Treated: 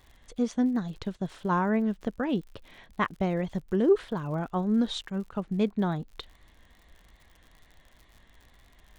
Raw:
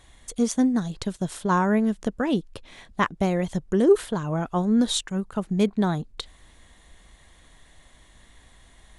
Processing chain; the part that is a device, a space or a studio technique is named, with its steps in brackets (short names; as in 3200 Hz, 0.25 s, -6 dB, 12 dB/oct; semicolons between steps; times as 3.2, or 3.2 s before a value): lo-fi chain (LPF 3700 Hz 12 dB/oct; wow and flutter; crackle 82/s -40 dBFS); gain -4.5 dB